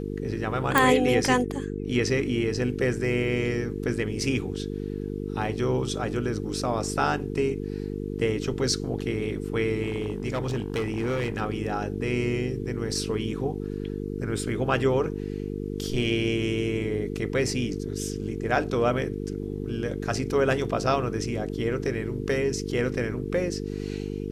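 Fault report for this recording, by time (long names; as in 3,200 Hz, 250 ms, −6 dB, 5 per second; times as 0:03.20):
mains buzz 50 Hz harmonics 9 −32 dBFS
0:00.78: click
0:09.82–0:11.42: clipping −23.5 dBFS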